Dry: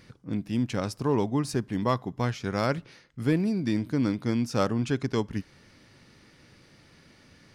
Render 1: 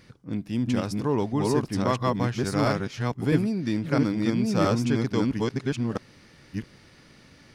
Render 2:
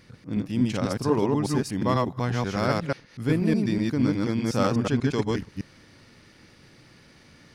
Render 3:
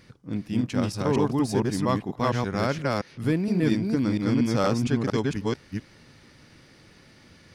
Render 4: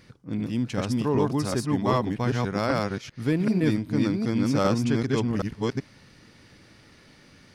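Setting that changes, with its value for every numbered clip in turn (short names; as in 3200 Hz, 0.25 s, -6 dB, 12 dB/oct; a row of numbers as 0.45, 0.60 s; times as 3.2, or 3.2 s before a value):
reverse delay, time: 0.664, 0.122, 0.232, 0.387 s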